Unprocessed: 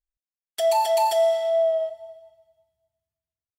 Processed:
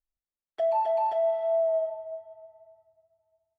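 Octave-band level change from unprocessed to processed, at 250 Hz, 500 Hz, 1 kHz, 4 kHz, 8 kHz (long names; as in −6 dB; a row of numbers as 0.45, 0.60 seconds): can't be measured, −4.5 dB, −5.0 dB, below −20 dB, below −35 dB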